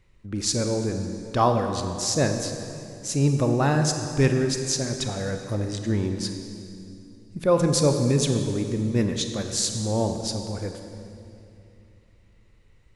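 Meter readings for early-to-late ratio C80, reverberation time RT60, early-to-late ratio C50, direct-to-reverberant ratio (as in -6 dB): 7.0 dB, 2.7 s, 6.0 dB, 5.5 dB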